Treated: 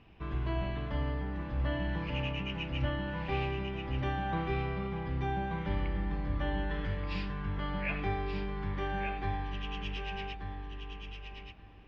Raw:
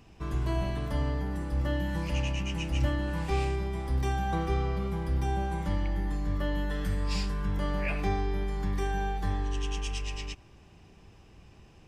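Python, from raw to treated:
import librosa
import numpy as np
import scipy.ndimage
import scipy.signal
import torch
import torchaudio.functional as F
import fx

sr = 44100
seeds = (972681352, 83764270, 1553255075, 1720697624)

y = scipy.signal.sosfilt(scipy.signal.butter(4, 3100.0, 'lowpass', fs=sr, output='sos'), x)
y = fx.high_shelf(y, sr, hz=2300.0, db=8.0)
y = fx.echo_feedback(y, sr, ms=1180, feedback_pct=15, wet_db=-6.5)
y = y * librosa.db_to_amplitude(-4.0)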